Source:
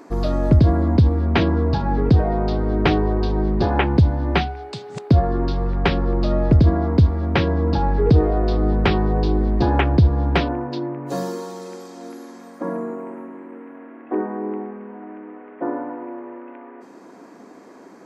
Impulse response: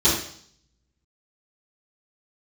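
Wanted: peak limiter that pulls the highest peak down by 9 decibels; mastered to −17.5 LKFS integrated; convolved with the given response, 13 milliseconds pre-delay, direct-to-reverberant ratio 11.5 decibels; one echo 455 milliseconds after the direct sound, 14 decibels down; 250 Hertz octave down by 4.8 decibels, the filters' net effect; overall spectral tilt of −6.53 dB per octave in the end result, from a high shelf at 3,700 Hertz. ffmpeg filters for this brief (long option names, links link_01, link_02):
-filter_complex "[0:a]equalizer=frequency=250:width_type=o:gain=-7,highshelf=frequency=3700:gain=6,alimiter=limit=-13.5dB:level=0:latency=1,aecho=1:1:455:0.2,asplit=2[link_01][link_02];[1:a]atrim=start_sample=2205,adelay=13[link_03];[link_02][link_03]afir=irnorm=-1:irlink=0,volume=-28.5dB[link_04];[link_01][link_04]amix=inputs=2:normalize=0,volume=5dB"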